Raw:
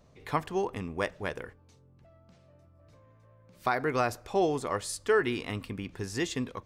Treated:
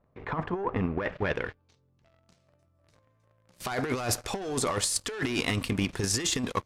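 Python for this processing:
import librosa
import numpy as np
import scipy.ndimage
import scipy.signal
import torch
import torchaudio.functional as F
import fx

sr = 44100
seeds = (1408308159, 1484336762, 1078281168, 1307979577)

p1 = fx.high_shelf(x, sr, hz=2500.0, db=6.5)
p2 = fx.level_steps(p1, sr, step_db=18)
p3 = p1 + (p2 * 10.0 ** (1.0 / 20.0))
p4 = fx.leveller(p3, sr, passes=3)
p5 = fx.over_compress(p4, sr, threshold_db=-20.0, ratio=-0.5)
p6 = fx.filter_sweep_lowpass(p5, sr, from_hz=1300.0, to_hz=11000.0, start_s=0.72, end_s=2.48, q=1.0)
y = p6 * 10.0 ** (-8.0 / 20.0)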